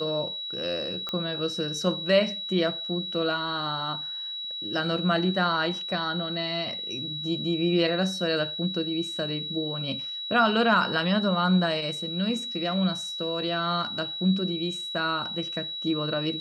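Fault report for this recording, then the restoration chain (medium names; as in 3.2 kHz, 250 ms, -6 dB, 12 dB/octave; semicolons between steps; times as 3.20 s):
whine 3.9 kHz -32 dBFS
1.09 s: pop -17 dBFS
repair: de-click; band-stop 3.9 kHz, Q 30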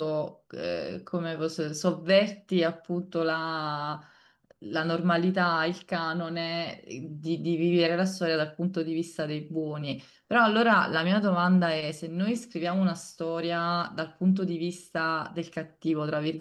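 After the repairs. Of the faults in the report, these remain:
nothing left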